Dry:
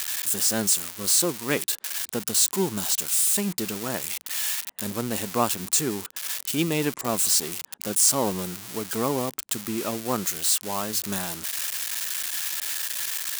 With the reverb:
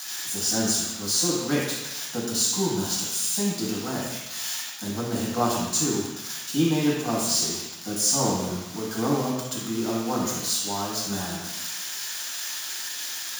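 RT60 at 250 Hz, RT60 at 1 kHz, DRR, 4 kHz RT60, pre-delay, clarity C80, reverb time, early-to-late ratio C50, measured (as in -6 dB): 0.95 s, 1.2 s, -6.0 dB, 1.2 s, 3 ms, 2.5 dB, 1.1 s, -0.5 dB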